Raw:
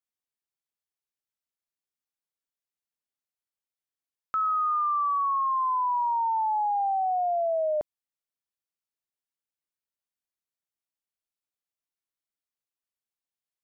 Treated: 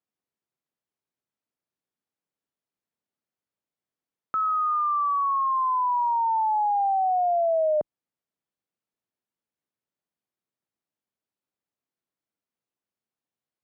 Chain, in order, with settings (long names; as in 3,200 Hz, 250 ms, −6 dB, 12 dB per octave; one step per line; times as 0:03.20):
high-pass filter 170 Hz 12 dB per octave
spectral tilt −3.5 dB per octave
in parallel at 0 dB: brickwall limiter −28.5 dBFS, peak gain reduction 8 dB
on the sum: level −1.5 dB